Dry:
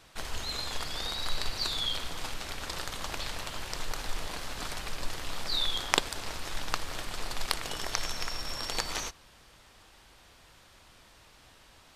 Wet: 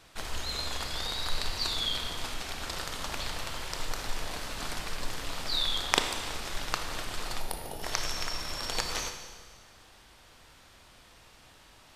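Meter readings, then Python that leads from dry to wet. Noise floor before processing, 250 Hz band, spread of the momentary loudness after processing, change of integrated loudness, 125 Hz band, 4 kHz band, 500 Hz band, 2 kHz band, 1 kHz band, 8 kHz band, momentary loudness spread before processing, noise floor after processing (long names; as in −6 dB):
−58 dBFS, +1.0 dB, 9 LU, +1.0 dB, +1.0 dB, +1.0 dB, +1.0 dB, +1.0 dB, +1.0 dB, +1.0 dB, 9 LU, −56 dBFS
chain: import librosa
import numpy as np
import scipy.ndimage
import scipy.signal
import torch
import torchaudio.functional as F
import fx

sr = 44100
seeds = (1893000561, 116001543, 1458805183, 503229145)

y = fx.spec_box(x, sr, start_s=7.4, length_s=0.43, low_hz=960.0, high_hz=9200.0, gain_db=-14)
y = fx.rev_schroeder(y, sr, rt60_s=1.6, comb_ms=25, drr_db=5.5)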